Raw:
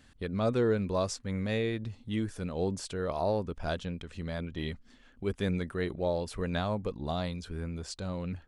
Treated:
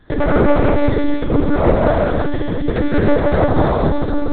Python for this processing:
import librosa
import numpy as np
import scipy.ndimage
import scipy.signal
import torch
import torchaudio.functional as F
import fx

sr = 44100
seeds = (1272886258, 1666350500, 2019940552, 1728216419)

p1 = fx.tracing_dist(x, sr, depth_ms=0.42)
p2 = scipy.signal.sosfilt(scipy.signal.butter(2, 45.0, 'highpass', fs=sr, output='sos'), p1)
p3 = fx.peak_eq(p2, sr, hz=2800.0, db=-12.0, octaves=0.31)
p4 = fx.hum_notches(p3, sr, base_hz=50, count=8)
p5 = fx.transient(p4, sr, attack_db=8, sustain_db=-2)
p6 = fx.graphic_eq_15(p5, sr, hz=(250, 1000, 2500), db=(3, 4, -6))
p7 = fx.stretch_vocoder(p6, sr, factor=0.51)
p8 = fx.fold_sine(p7, sr, drive_db=11, ceiling_db=-12.0)
p9 = p7 + (p8 * librosa.db_to_amplitude(-9.0))
p10 = fx.rev_gated(p9, sr, seeds[0], gate_ms=400, shape='flat', drr_db=-5.0)
p11 = fx.lpc_monotone(p10, sr, seeds[1], pitch_hz=290.0, order=8)
y = p11 * librosa.db_to_amplitude(3.0)